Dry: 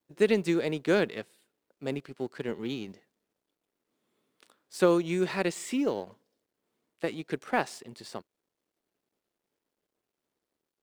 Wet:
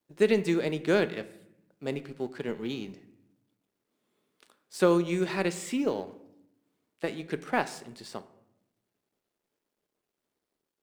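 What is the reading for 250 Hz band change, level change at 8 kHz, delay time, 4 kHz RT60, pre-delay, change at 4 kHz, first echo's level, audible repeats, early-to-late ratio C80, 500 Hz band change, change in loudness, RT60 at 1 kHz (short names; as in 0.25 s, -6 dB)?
+0.5 dB, 0.0 dB, none, 0.50 s, 5 ms, 0.0 dB, none, none, 18.0 dB, +0.5 dB, +0.5 dB, 0.75 s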